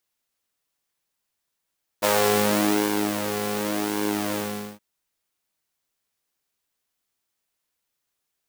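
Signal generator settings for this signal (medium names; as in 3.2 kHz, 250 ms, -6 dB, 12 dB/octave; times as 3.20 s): synth patch with pulse-width modulation G#2, detune 16 cents, noise -9 dB, filter highpass, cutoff 210 Hz, Q 1.5, filter envelope 1.5 oct, filter decay 0.37 s, filter sustain 40%, attack 23 ms, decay 1.06 s, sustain -8.5 dB, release 0.45 s, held 2.32 s, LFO 0.88 Hz, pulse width 25%, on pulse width 9%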